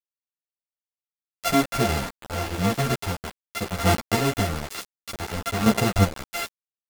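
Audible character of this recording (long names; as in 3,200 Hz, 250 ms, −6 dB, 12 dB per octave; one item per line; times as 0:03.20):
a buzz of ramps at a fixed pitch in blocks of 64 samples
chopped level 0.53 Hz, depth 65%, duty 20%
a quantiser's noise floor 6 bits, dither none
a shimmering, thickened sound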